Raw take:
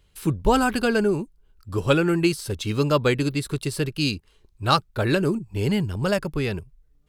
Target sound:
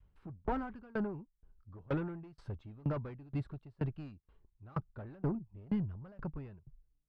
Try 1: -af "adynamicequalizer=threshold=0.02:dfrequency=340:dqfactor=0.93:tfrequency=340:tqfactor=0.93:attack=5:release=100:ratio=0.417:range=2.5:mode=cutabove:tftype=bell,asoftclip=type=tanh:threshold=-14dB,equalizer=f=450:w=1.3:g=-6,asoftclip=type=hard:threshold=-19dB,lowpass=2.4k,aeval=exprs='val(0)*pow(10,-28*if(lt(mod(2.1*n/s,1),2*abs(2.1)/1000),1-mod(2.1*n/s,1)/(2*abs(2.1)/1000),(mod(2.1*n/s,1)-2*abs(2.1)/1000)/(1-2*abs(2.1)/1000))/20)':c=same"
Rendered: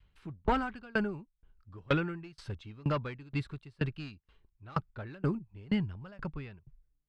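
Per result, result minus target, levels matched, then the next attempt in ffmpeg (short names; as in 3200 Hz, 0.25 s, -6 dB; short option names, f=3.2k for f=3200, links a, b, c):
2000 Hz band +7.5 dB; soft clip: distortion -8 dB
-af "adynamicequalizer=threshold=0.02:dfrequency=340:dqfactor=0.93:tfrequency=340:tqfactor=0.93:attack=5:release=100:ratio=0.417:range=2.5:mode=cutabove:tftype=bell,asoftclip=type=tanh:threshold=-14dB,equalizer=f=450:w=1.3:g=-6,asoftclip=type=hard:threshold=-19dB,lowpass=1k,aeval=exprs='val(0)*pow(10,-28*if(lt(mod(2.1*n/s,1),2*abs(2.1)/1000),1-mod(2.1*n/s,1)/(2*abs(2.1)/1000),(mod(2.1*n/s,1)-2*abs(2.1)/1000)/(1-2*abs(2.1)/1000))/20)':c=same"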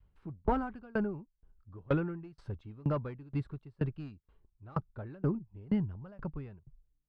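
soft clip: distortion -8 dB
-af "adynamicequalizer=threshold=0.02:dfrequency=340:dqfactor=0.93:tfrequency=340:tqfactor=0.93:attack=5:release=100:ratio=0.417:range=2.5:mode=cutabove:tftype=bell,asoftclip=type=tanh:threshold=-23.5dB,equalizer=f=450:w=1.3:g=-6,asoftclip=type=hard:threshold=-19dB,lowpass=1k,aeval=exprs='val(0)*pow(10,-28*if(lt(mod(2.1*n/s,1),2*abs(2.1)/1000),1-mod(2.1*n/s,1)/(2*abs(2.1)/1000),(mod(2.1*n/s,1)-2*abs(2.1)/1000)/(1-2*abs(2.1)/1000))/20)':c=same"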